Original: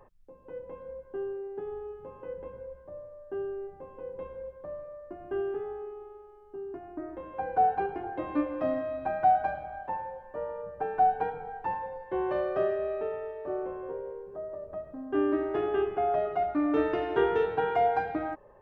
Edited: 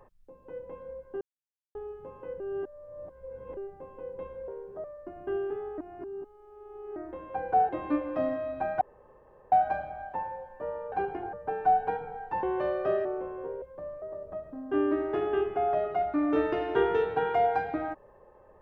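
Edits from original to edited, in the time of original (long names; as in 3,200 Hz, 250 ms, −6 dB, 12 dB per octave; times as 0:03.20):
0:01.21–0:01.75: silence
0:02.40–0:03.57: reverse
0:04.48–0:04.88: swap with 0:14.07–0:14.43
0:05.82–0:07.00: reverse
0:07.73–0:08.14: move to 0:10.66
0:09.26: splice in room tone 0.71 s
0:11.76–0:12.14: remove
0:12.76–0:13.50: remove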